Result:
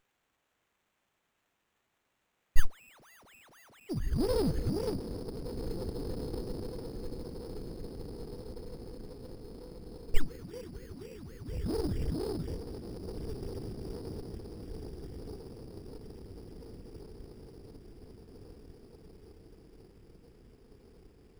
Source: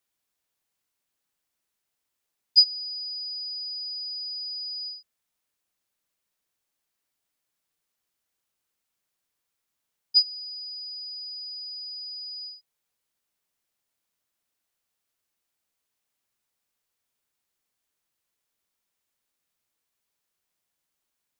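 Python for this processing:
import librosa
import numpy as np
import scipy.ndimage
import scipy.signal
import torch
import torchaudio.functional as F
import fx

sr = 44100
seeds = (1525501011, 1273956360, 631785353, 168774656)

y = fx.wow_flutter(x, sr, seeds[0], rate_hz=2.1, depth_cents=90.0)
y = fx.echo_diffused(y, sr, ms=1802, feedback_pct=60, wet_db=-9)
y = fx.running_max(y, sr, window=9)
y = y * 10.0 ** (7.0 / 20.0)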